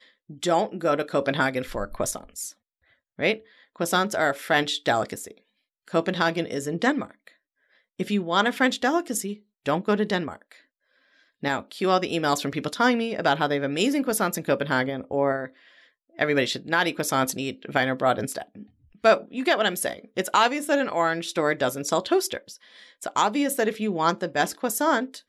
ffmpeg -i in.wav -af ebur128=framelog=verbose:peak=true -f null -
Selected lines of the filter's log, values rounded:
Integrated loudness:
  I:         -24.8 LUFS
  Threshold: -35.5 LUFS
Loudness range:
  LRA:         3.5 LU
  Threshold: -45.6 LUFS
  LRA low:   -27.5 LUFS
  LRA high:  -24.0 LUFS
True peak:
  Peak:       -6.2 dBFS